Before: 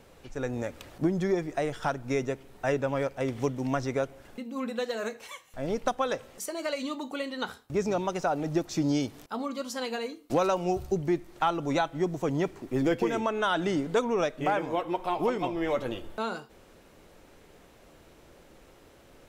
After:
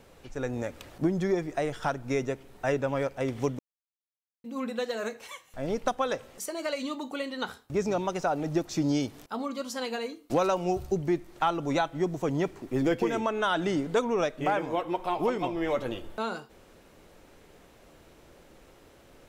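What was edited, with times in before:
3.59–4.44 s: mute

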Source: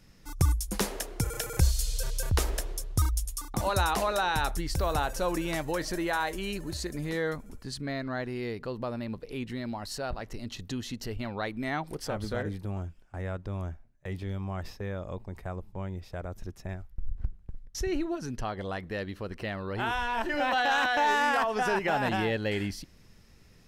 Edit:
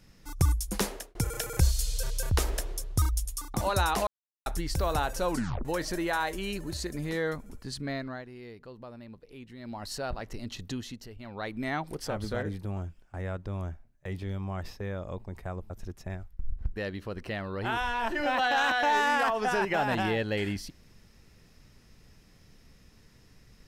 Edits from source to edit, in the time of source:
0.85–1.15 s: fade out
4.07–4.46 s: mute
5.31 s: tape stop 0.34 s
7.95–9.87 s: dip -11 dB, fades 0.30 s
10.70–11.59 s: dip -10.5 dB, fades 0.39 s
15.70–16.29 s: delete
17.35–18.90 s: delete

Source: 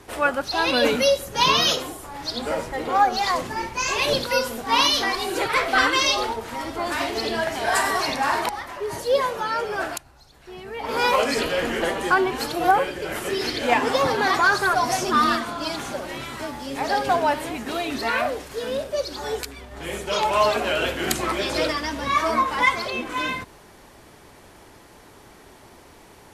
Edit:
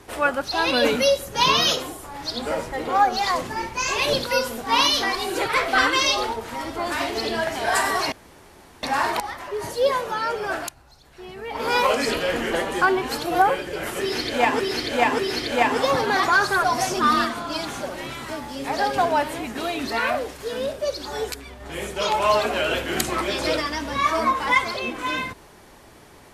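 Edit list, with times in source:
8.12 s: insert room tone 0.71 s
13.30–13.89 s: loop, 3 plays

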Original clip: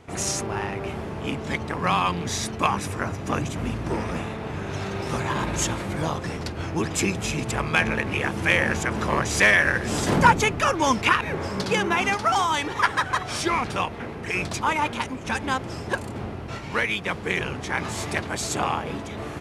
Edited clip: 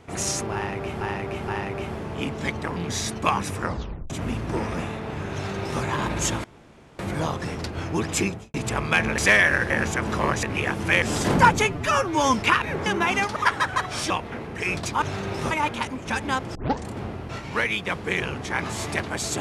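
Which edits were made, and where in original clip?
0.54–1.01 s: loop, 3 plays
1.82–2.13 s: delete
2.99 s: tape stop 0.48 s
4.70–5.19 s: copy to 14.70 s
5.81 s: insert room tone 0.55 s
7.02–7.36 s: studio fade out
8.00–8.59 s: swap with 9.32–9.84 s
10.47–10.93 s: stretch 1.5×
11.45–11.76 s: delete
12.26–12.73 s: delete
13.47–13.78 s: delete
15.74 s: tape start 0.32 s

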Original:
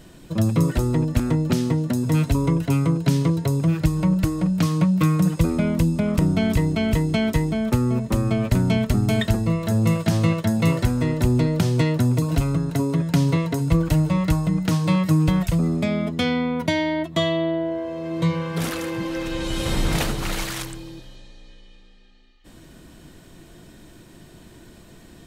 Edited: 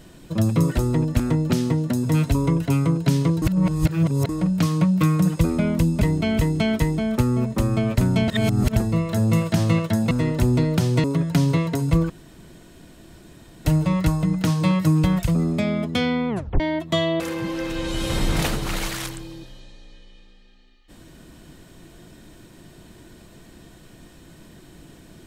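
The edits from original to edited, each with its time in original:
3.42–4.29 s: reverse
6.01–6.55 s: delete
8.82–9.30 s: reverse
10.65–10.93 s: delete
11.86–12.83 s: delete
13.89 s: insert room tone 1.55 s
16.53 s: tape stop 0.31 s
17.44–18.76 s: delete

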